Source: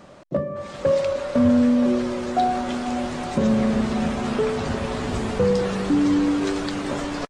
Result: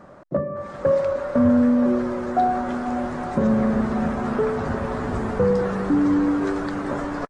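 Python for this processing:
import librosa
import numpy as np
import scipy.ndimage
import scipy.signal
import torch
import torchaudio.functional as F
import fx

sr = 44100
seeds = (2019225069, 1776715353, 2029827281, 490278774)

y = fx.high_shelf_res(x, sr, hz=2100.0, db=-9.5, q=1.5)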